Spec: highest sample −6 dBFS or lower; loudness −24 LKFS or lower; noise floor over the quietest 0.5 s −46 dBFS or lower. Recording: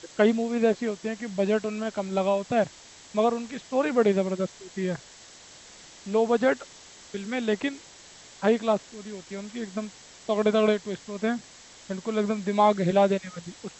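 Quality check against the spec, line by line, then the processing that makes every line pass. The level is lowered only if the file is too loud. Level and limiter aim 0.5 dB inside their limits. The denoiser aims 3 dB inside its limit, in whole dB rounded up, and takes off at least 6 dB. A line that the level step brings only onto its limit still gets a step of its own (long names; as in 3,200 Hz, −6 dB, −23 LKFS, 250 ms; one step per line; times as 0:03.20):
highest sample −8.5 dBFS: in spec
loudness −26.5 LKFS: in spec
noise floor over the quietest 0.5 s −49 dBFS: in spec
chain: no processing needed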